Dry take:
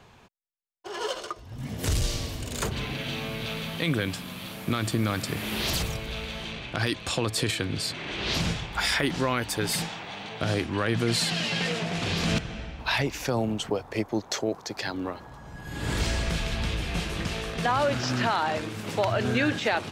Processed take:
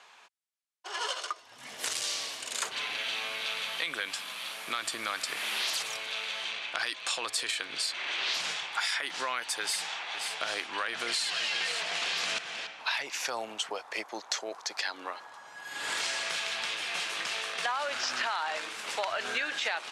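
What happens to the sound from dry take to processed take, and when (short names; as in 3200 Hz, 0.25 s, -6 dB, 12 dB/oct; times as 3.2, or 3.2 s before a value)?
9.62–12.67 echo 0.522 s -11 dB
whole clip: HPF 970 Hz 12 dB/oct; compressor, threshold -31 dBFS; LPF 11000 Hz 24 dB/oct; gain +3 dB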